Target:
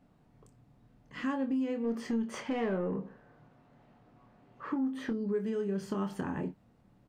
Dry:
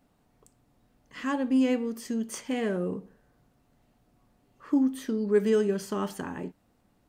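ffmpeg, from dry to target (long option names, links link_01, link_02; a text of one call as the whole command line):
ffmpeg -i in.wav -filter_complex "[0:a]lowpass=frequency=2800:poles=1,equalizer=frequency=140:width_type=o:width=1.1:gain=7,acompressor=threshold=-30dB:ratio=10,asplit=3[link_01][link_02][link_03];[link_01]afade=type=out:start_time=1.83:duration=0.02[link_04];[link_02]asplit=2[link_05][link_06];[link_06]highpass=frequency=720:poles=1,volume=16dB,asoftclip=type=tanh:threshold=-24dB[link_07];[link_05][link_07]amix=inputs=2:normalize=0,lowpass=frequency=1600:poles=1,volume=-6dB,afade=type=in:start_time=1.83:duration=0.02,afade=type=out:start_time=5.1:duration=0.02[link_08];[link_03]afade=type=in:start_time=5.1:duration=0.02[link_09];[link_04][link_08][link_09]amix=inputs=3:normalize=0,asplit=2[link_10][link_11];[link_11]adelay=26,volume=-7.5dB[link_12];[link_10][link_12]amix=inputs=2:normalize=0" out.wav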